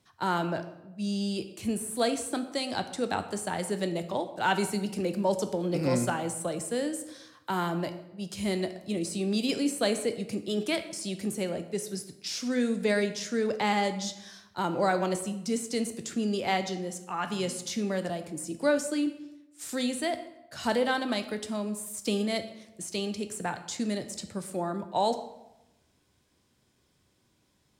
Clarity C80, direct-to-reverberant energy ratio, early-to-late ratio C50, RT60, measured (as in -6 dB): 13.5 dB, 8.0 dB, 11.5 dB, 0.90 s